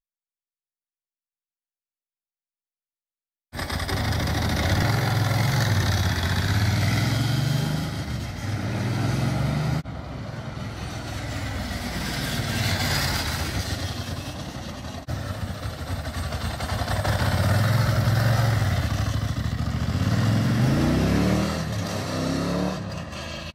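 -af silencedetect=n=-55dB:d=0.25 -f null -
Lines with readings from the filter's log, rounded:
silence_start: 0.00
silence_end: 3.52 | silence_duration: 3.52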